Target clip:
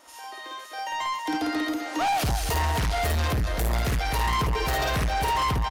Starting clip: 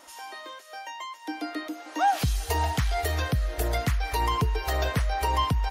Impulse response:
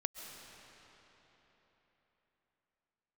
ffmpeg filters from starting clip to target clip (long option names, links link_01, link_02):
-af "aecho=1:1:52.48|253.6:0.891|0.316,dynaudnorm=framelen=370:gausssize=5:maxgain=14dB,asoftclip=type=tanh:threshold=-19dB,volume=-3dB"